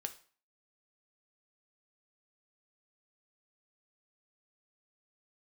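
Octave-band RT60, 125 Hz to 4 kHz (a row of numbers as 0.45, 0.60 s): 0.40, 0.45, 0.40, 0.45, 0.40, 0.40 s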